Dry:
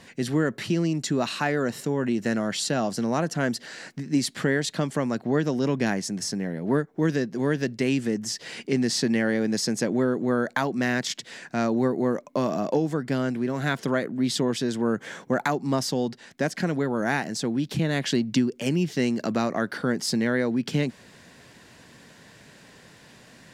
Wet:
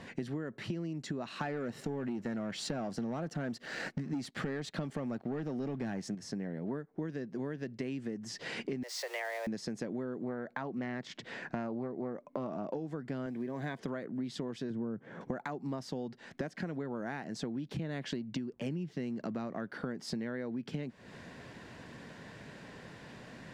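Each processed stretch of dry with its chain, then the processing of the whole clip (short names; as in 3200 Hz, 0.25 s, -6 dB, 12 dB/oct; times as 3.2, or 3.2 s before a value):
1.41–6.15 sample leveller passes 2 + notch 1000 Hz, Q 14
8.83–9.47 switching spikes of -23.5 dBFS + Bessel high-pass 630 Hz, order 8 + frequency shift +130 Hz
10.24–12.73 high shelf 4600 Hz -10 dB + Doppler distortion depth 0.14 ms
13.26–13.81 notch comb 1400 Hz + short-mantissa float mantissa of 4-bit
14.7–15.21 LPF 1000 Hz 6 dB/oct + bell 140 Hz +7 dB 2.4 oct
18.51–19.68 backlash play -49 dBFS + bell 160 Hz +4 dB 1.4 oct
whole clip: LPF 1900 Hz 6 dB/oct; compressor 12:1, threshold -37 dBFS; gain +2.5 dB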